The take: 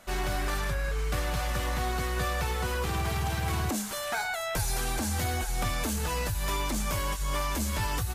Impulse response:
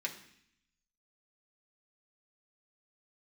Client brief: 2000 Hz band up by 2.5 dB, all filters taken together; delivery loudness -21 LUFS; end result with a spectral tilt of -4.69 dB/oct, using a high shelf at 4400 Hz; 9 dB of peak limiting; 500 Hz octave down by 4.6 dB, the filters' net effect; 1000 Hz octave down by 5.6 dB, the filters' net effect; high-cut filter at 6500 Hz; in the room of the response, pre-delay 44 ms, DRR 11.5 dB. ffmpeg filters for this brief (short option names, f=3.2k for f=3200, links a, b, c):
-filter_complex "[0:a]lowpass=6.5k,equalizer=f=500:t=o:g=-4,equalizer=f=1k:t=o:g=-7.5,equalizer=f=2k:t=o:g=7.5,highshelf=f=4.4k:g=-8.5,alimiter=level_in=4.5dB:limit=-24dB:level=0:latency=1,volume=-4.5dB,asplit=2[a][b];[1:a]atrim=start_sample=2205,adelay=44[c];[b][c]afir=irnorm=-1:irlink=0,volume=-13.5dB[d];[a][d]amix=inputs=2:normalize=0,volume=15.5dB"